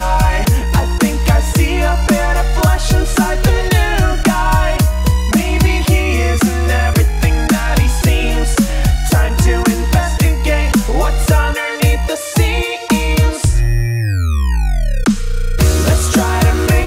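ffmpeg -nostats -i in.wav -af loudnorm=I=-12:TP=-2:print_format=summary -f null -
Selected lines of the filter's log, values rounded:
Input Integrated:    -14.4 LUFS
Input True Peak:      -1.7 dBTP
Input LRA:             1.1 LU
Input Threshold:     -24.4 LUFS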